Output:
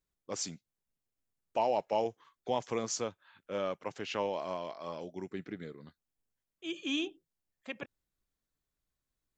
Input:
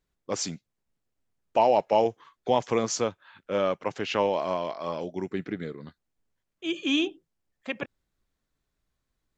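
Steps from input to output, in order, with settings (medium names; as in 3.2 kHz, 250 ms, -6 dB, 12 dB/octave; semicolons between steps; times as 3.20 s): treble shelf 6.9 kHz +8.5 dB; trim -9 dB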